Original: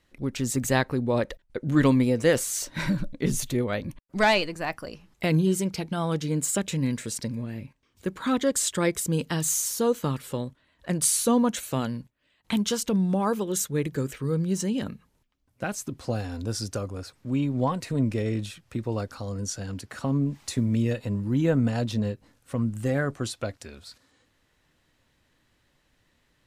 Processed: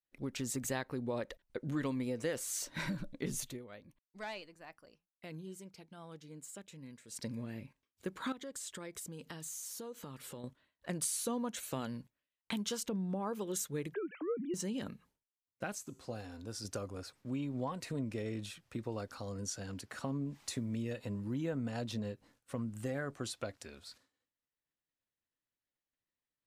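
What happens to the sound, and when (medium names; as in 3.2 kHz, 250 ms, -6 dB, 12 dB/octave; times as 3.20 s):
3.40–7.27 s: dip -16 dB, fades 0.19 s
8.32–10.44 s: compression 5:1, threshold -36 dBFS
12.88–13.35 s: treble shelf 2.4 kHz -10.5 dB
13.94–14.54 s: formants replaced by sine waves
15.78–16.65 s: feedback comb 55 Hz, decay 0.76 s, harmonics odd, mix 50%
whole clip: expander -53 dBFS; bass shelf 150 Hz -7.5 dB; compression 3:1, threshold -29 dBFS; trim -6 dB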